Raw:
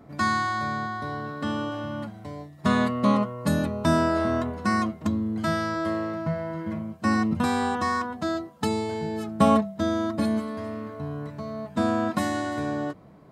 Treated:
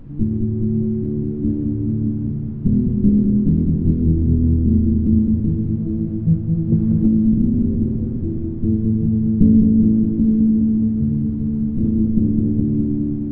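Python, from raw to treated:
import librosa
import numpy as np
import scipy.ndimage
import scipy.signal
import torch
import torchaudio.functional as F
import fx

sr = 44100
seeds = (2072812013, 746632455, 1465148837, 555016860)

p1 = fx.lower_of_two(x, sr, delay_ms=0.68)
p2 = scipy.signal.sosfilt(scipy.signal.cheby2(4, 70, [1200.0, 4500.0], 'bandstop', fs=sr, output='sos'), p1)
p3 = fx.low_shelf(p2, sr, hz=210.0, db=10.0)
p4 = fx.hum_notches(p3, sr, base_hz=50, count=5)
p5 = fx.rider(p4, sr, range_db=4, speed_s=0.5)
p6 = p4 + F.gain(torch.from_numpy(p5), -2.5).numpy()
p7 = fx.rotary(p6, sr, hz=8.0)
p8 = fx.dmg_noise_colour(p7, sr, seeds[0], colour='brown', level_db=-44.0)
p9 = fx.quant_companded(p8, sr, bits=8)
p10 = fx.spacing_loss(p9, sr, db_at_10k=36)
p11 = p10 + fx.echo_opening(p10, sr, ms=209, hz=750, octaves=1, feedback_pct=70, wet_db=-3, dry=0)
p12 = fx.band_squash(p11, sr, depth_pct=100, at=(6.72, 7.38))
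y = F.gain(torch.from_numpy(p12), 2.5).numpy()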